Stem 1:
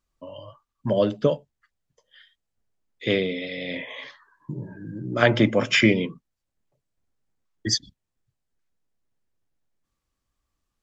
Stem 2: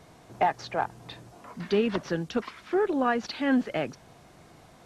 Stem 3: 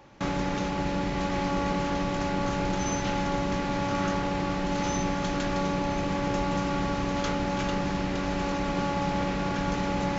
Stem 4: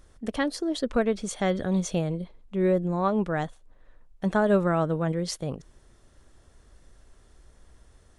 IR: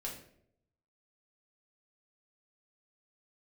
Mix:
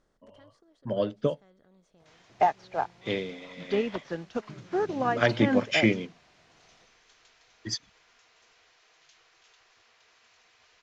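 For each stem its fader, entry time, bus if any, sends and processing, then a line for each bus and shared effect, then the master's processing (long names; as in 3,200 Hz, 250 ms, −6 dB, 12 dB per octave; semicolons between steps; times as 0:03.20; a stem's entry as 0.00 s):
−4.0 dB, 0.00 s, no send, no processing
−2.0 dB, 2.00 s, no send, parametric band 700 Hz +5 dB 1.2 octaves
−15.5 dB, 1.85 s, no send, gate on every frequency bin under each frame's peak −15 dB weak; high-shelf EQ 3,300 Hz +10.5 dB
−18.0 dB, 0.00 s, no send, compressor on every frequency bin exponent 0.6; automatic ducking −9 dB, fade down 0.85 s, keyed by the first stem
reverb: not used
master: low-pass filter 7,100 Hz 12 dB per octave; expander for the loud parts 1.5 to 1, over −41 dBFS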